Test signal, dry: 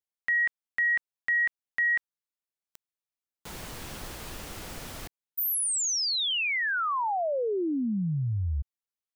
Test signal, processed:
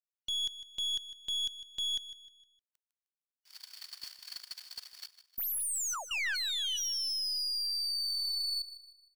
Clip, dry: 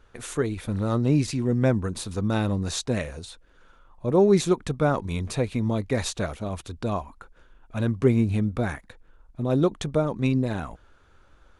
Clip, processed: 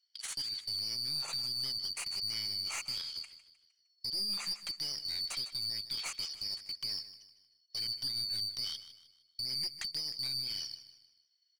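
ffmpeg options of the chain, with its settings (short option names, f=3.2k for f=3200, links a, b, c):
-filter_complex "[0:a]afftfilt=real='real(if(lt(b,272),68*(eq(floor(b/68),0)*3+eq(floor(b/68),1)*2+eq(floor(b/68),2)*1+eq(floor(b/68),3)*0)+mod(b,68),b),0)':imag='imag(if(lt(b,272),68*(eq(floor(b/68),0)*3+eq(floor(b/68),1)*2+eq(floor(b/68),2)*1+eq(floor(b/68),3)*0)+mod(b,68),b),0)':win_size=2048:overlap=0.75,highpass=1.1k,agate=range=-23dB:threshold=-42dB:ratio=16:release=24:detection=peak,acrossover=split=1600[a][b];[a]alimiter=level_in=13.5dB:limit=-24dB:level=0:latency=1:release=385,volume=-13.5dB[c];[b]acompressor=threshold=-31dB:ratio=6:attack=0.42:release=328:knee=1:detection=peak[d];[c][d]amix=inputs=2:normalize=0,aeval=exprs='clip(val(0),-1,0.0188)':c=same,aecho=1:1:154|308|462|616:0.2|0.0798|0.0319|0.0128"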